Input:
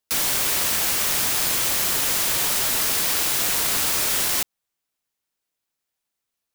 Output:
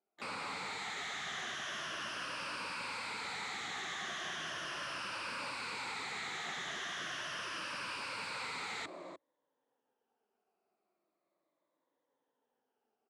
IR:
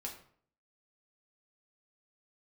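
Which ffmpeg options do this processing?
-filter_complex "[0:a]afftfilt=real='re*pow(10,13/40*sin(2*PI*(1.1*log(max(b,1)*sr/1024/100)/log(2)-(-0.75)*(pts-256)/sr)))':imag='im*pow(10,13/40*sin(2*PI*(1.1*log(max(b,1)*sr/1024/100)/log(2)-(-0.75)*(pts-256)/sr)))':win_size=1024:overlap=0.75,equalizer=f=2.6k:t=o:w=0.85:g=-3.5,asplit=2[a][b];[b]aecho=0:1:151:0.075[c];[a][c]amix=inputs=2:normalize=0,dynaudnorm=f=140:g=5:m=6dB,acrossover=split=460 2000:gain=0.2 1 0.0794[d][e][f];[d][e][f]amix=inputs=3:normalize=0,asetrate=22050,aresample=44100,afftfilt=real='re*lt(hypot(re,im),0.0501)':imag='im*lt(hypot(re,im),0.0501)':win_size=1024:overlap=0.75,asplit=2[g][h];[h]asetrate=66075,aresample=44100,atempo=0.66742,volume=-12dB[i];[g][i]amix=inputs=2:normalize=0,asoftclip=type=tanh:threshold=-36dB,highpass=210,lowpass=3.3k,volume=3.5dB"

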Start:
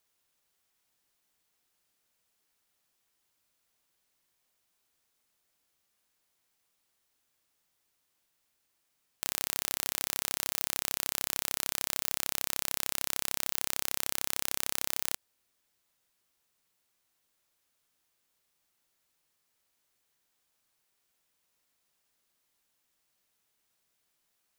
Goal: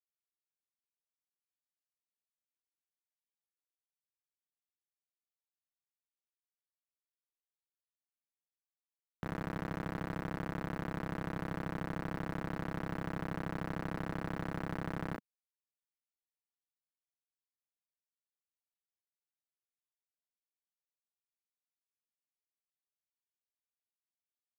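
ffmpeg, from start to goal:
-filter_complex "[0:a]asplit=2[a][b];[b]aecho=0:1:15|36:0.266|0.422[c];[a][c]amix=inputs=2:normalize=0,alimiter=limit=-7dB:level=0:latency=1:release=146,highpass=f=170:t=q:w=0.5412,highpass=f=170:t=q:w=1.307,lowpass=f=2.2k:t=q:w=0.5176,lowpass=f=2.2k:t=q:w=0.7071,lowpass=f=2.2k:t=q:w=1.932,afreqshift=-360,acrusher=bits=9:mix=0:aa=0.000001,asoftclip=type=tanh:threshold=-35.5dB,equalizer=f=200:t=o:w=2:g=12.5,volume=5.5dB"

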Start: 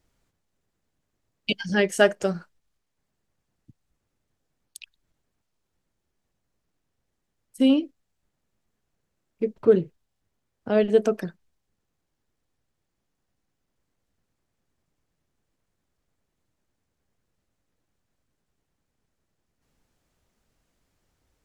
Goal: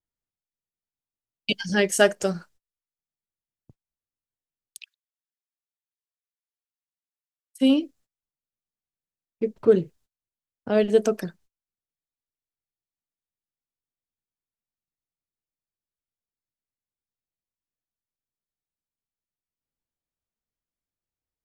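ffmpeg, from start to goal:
-filter_complex "[0:a]agate=range=-24dB:threshold=-53dB:ratio=16:detection=peak,asplit=3[a][b][c];[a]afade=t=out:st=4.77:d=0.02[d];[b]highpass=f=1.4k:w=0.5412,highpass=f=1.4k:w=1.3066,afade=t=in:st=4.77:d=0.02,afade=t=out:st=7.61:d=0.02[e];[c]afade=t=in:st=7.61:d=0.02[f];[d][e][f]amix=inputs=3:normalize=0,adynamicequalizer=threshold=0.00794:dfrequency=4000:dqfactor=0.7:tfrequency=4000:tqfactor=0.7:attack=5:release=100:ratio=0.375:range=4:mode=boostabove:tftype=highshelf"

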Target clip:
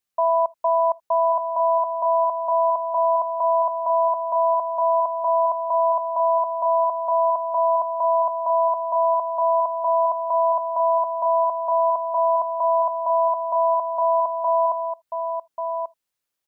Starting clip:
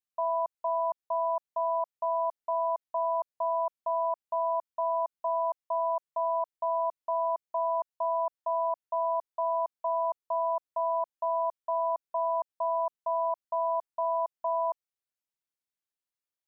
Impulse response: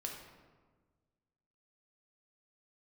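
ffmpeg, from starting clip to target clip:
-filter_complex "[0:a]aecho=1:1:1138:0.422,asplit=2[a][b];[1:a]atrim=start_sample=2205,atrim=end_sample=3969,asetrate=48510,aresample=44100[c];[b][c]afir=irnorm=-1:irlink=0,volume=-15dB[d];[a][d]amix=inputs=2:normalize=0,volume=8.5dB"

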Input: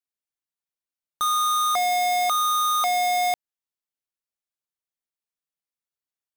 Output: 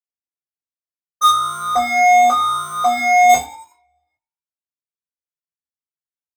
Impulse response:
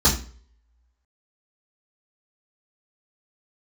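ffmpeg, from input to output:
-filter_complex "[0:a]asettb=1/sr,asplit=3[a][b][c];[a]atrim=end=1.284[d];[b]atrim=start=1.28:end=3.29,asetpts=PTS-STARTPTS,afade=t=in:d=0.004:c=qsin,afade=t=out:st=2.006:d=0.004:c=qsin,highshelf=f=2.2k:g=-12[e];[c]atrim=start=3.286[f];[d][e]acrossfade=d=0.004:c1=hsin:c2=qsin[g];[g][f]acrossfade=d=0.004:c1=qsin:c2=hsin,agate=range=-33dB:threshold=-18dB:ratio=3:detection=peak,lowshelf=f=93:g=-8,asplit=2[h][i];[i]adelay=19,volume=-8dB[j];[h][j]amix=inputs=2:normalize=0,asplit=5[k][l][m][n][o];[l]adelay=93,afreqshift=59,volume=-18dB[p];[m]adelay=186,afreqshift=118,volume=-24.9dB[q];[n]adelay=279,afreqshift=177,volume=-31.9dB[r];[o]adelay=372,afreqshift=236,volume=-38.8dB[s];[k][p][q][r][s]amix=inputs=5:normalize=0[t];[1:a]atrim=start_sample=2205,asetrate=52920,aresample=44100[u];[t][u]afir=irnorm=-1:irlink=0,asplit=2[v][w];[w]adelay=2.2,afreqshift=1.8[x];[v][x]amix=inputs=2:normalize=1,volume=6.5dB"

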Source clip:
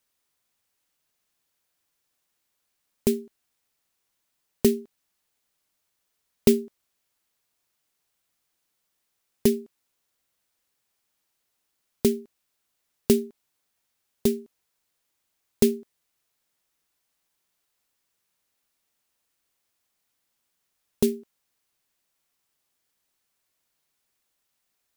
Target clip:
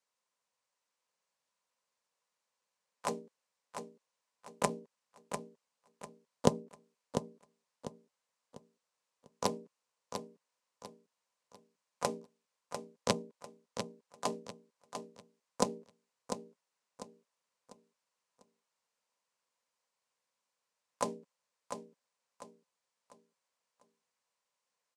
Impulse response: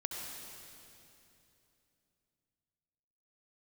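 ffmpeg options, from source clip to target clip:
-filter_complex "[0:a]asplit=2[a][b];[b]acompressor=threshold=-25dB:ratio=6,volume=2dB[c];[a][c]amix=inputs=2:normalize=0,aeval=exprs='1.19*(cos(1*acos(clip(val(0)/1.19,-1,1)))-cos(1*PI/2))+0.531*(cos(3*acos(clip(val(0)/1.19,-1,1)))-cos(3*PI/2))+0.0422*(cos(4*acos(clip(val(0)/1.19,-1,1)))-cos(4*PI/2))+0.0596*(cos(5*acos(clip(val(0)/1.19,-1,1)))-cos(5*PI/2))+0.00668*(cos(6*acos(clip(val(0)/1.19,-1,1)))-cos(6*PI/2))':c=same,acrossover=split=410[d][e];[e]acompressor=threshold=-34dB:ratio=10[f];[d][f]amix=inputs=2:normalize=0,asplit=4[g][h][i][j];[h]asetrate=33038,aresample=44100,atempo=1.33484,volume=-4dB[k];[i]asetrate=52444,aresample=44100,atempo=0.840896,volume=-7dB[l];[j]asetrate=66075,aresample=44100,atempo=0.66742,volume=-18dB[m];[g][k][l][m]amix=inputs=4:normalize=0,highpass=180,equalizer=f=320:t=q:w=4:g=-10,equalizer=f=520:t=q:w=4:g=8,equalizer=f=1k:t=q:w=4:g=9,equalizer=f=3.4k:t=q:w=4:g=-3,lowpass=f=8.6k:w=0.5412,lowpass=f=8.6k:w=1.3066,asplit=2[n][o];[o]aecho=0:1:697|1394|2091|2788:0.398|0.135|0.046|0.0156[p];[n][p]amix=inputs=2:normalize=0,volume=4.5dB"

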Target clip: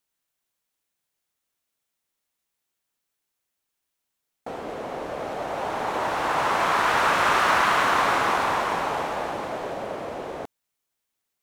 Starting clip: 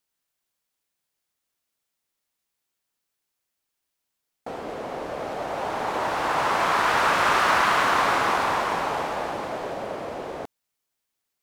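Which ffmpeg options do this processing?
-af "equalizer=f=4.8k:t=o:w=0.26:g=-2.5"

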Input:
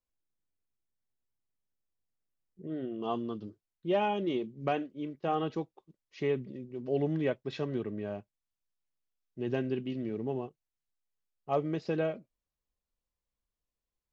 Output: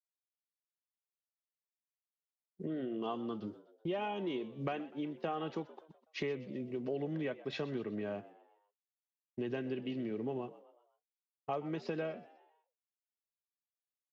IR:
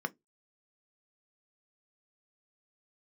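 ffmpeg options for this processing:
-filter_complex "[0:a]acrossover=split=190|1200[a][b][c];[c]acontrast=28[d];[a][b][d]amix=inputs=3:normalize=0,highpass=130,aemphasis=mode=reproduction:type=cd,agate=range=-33dB:threshold=-50dB:ratio=3:detection=peak,acompressor=threshold=-42dB:ratio=5,asplit=5[e][f][g][h][i];[f]adelay=125,afreqshift=77,volume=-18dB[j];[g]adelay=250,afreqshift=154,volume=-24.6dB[k];[h]adelay=375,afreqshift=231,volume=-31.1dB[l];[i]adelay=500,afreqshift=308,volume=-37.7dB[m];[e][j][k][l][m]amix=inputs=5:normalize=0,volume=6dB"

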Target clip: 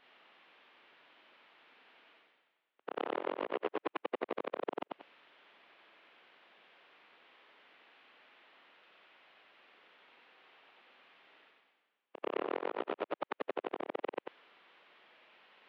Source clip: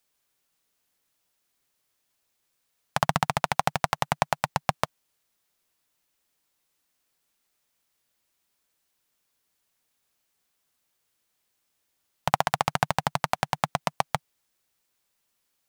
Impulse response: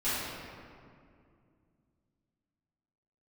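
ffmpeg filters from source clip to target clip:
-af "afftfilt=real='re':imag='-im':win_size=8192:overlap=0.75,areverse,acompressor=mode=upward:threshold=-31dB:ratio=2.5,areverse,aeval=exprs='(tanh(15.8*val(0)+0.55)-tanh(0.55))/15.8':c=same,highpass=f=500:t=q:w=0.5412,highpass=f=500:t=q:w=1.307,lowpass=f=3.5k:t=q:w=0.5176,lowpass=f=3.5k:t=q:w=0.7071,lowpass=f=3.5k:t=q:w=1.932,afreqshift=-350,highpass=320,volume=1.5dB"

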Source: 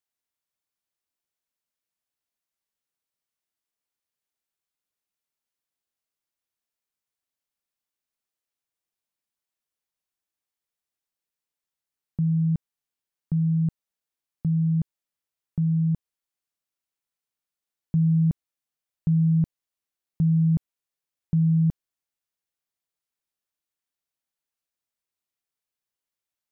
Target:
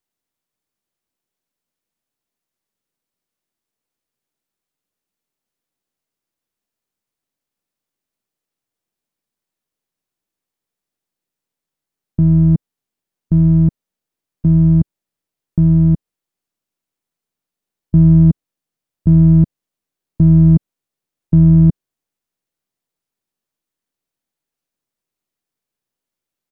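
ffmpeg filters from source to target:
-filter_complex "[0:a]aeval=exprs='if(lt(val(0),0),0.447*val(0),val(0))':c=same,equalizer=f=230:t=o:w=2.9:g=9.5,asplit=2[a][b];[b]asetrate=22050,aresample=44100,atempo=2,volume=-13dB[c];[a][c]amix=inputs=2:normalize=0,volume=5.5dB"

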